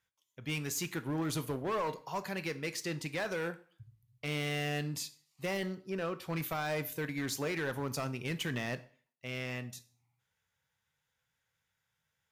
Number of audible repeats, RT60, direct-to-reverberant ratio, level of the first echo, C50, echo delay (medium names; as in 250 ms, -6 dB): no echo, 0.45 s, 11.5 dB, no echo, 17.0 dB, no echo